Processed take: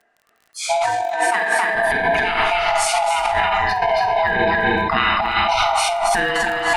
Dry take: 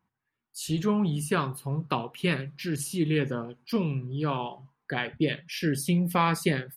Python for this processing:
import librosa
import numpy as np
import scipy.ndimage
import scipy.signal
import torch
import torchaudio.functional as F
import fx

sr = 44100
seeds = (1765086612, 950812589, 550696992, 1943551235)

y = fx.band_swap(x, sr, width_hz=500)
y = scipy.signal.sosfilt(scipy.signal.butter(4, 9000.0, 'lowpass', fs=sr, output='sos'), y)
y = fx.peak_eq(y, sr, hz=1700.0, db=10.0, octaves=1.0)
y = fx.echo_multitap(y, sr, ms=(274, 283, 309), db=(-3.0, -9.5, -11.0))
y = fx.rev_schroeder(y, sr, rt60_s=0.56, comb_ms=31, drr_db=0.0)
y = fx.over_compress(y, sr, threshold_db=-24.0, ratio=-0.5)
y = fx.dmg_crackle(y, sr, seeds[0], per_s=31.0, level_db=-43.0)
y = fx.steep_highpass(y, sr, hz=200.0, slope=36, at=(1.02, 1.75))
y = fx.sustainer(y, sr, db_per_s=21.0)
y = y * 10.0 ** (4.5 / 20.0)